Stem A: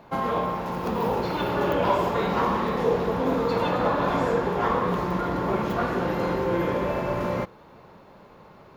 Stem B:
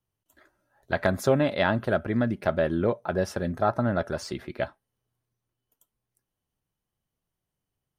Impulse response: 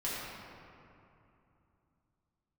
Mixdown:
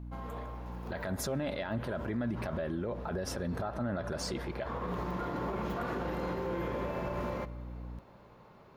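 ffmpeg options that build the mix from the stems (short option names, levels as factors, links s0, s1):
-filter_complex "[0:a]volume=0.398,afade=t=in:st=4.58:d=0.61:silence=0.298538,asplit=2[s0][s1];[s1]volume=0.0708[s2];[1:a]alimiter=limit=0.133:level=0:latency=1,aeval=exprs='val(0)+0.00708*(sin(2*PI*60*n/s)+sin(2*PI*2*60*n/s)/2+sin(2*PI*3*60*n/s)/3+sin(2*PI*4*60*n/s)/4+sin(2*PI*5*60*n/s)/5)':c=same,volume=1.12,asplit=3[s3][s4][s5];[s4]volume=0.0668[s6];[s5]apad=whole_len=386450[s7];[s0][s7]sidechaincompress=threshold=0.0447:ratio=8:attack=49:release=685[s8];[2:a]atrim=start_sample=2205[s9];[s2][s6]amix=inputs=2:normalize=0[s10];[s10][s9]afir=irnorm=-1:irlink=0[s11];[s8][s3][s11]amix=inputs=3:normalize=0,alimiter=level_in=1.33:limit=0.0631:level=0:latency=1:release=55,volume=0.75"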